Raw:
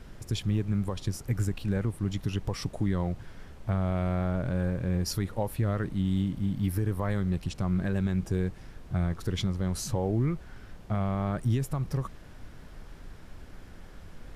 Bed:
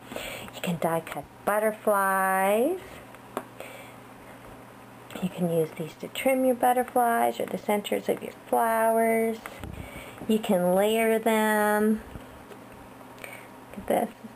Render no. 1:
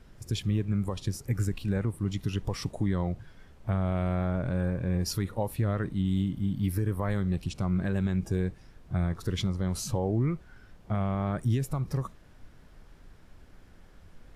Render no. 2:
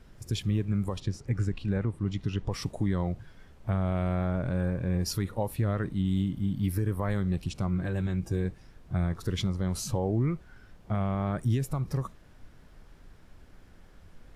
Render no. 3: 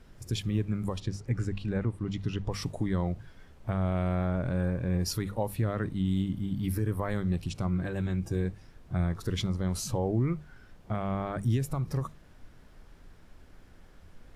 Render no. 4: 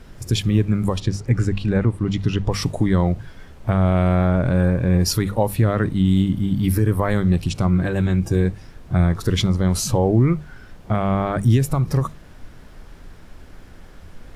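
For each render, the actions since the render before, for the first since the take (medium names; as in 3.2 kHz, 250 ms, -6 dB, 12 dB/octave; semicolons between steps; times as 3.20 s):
noise print and reduce 7 dB
1.00–2.52 s: distance through air 90 m; 7.67–8.45 s: comb of notches 210 Hz
hum notches 50/100/150/200 Hz
trim +11.5 dB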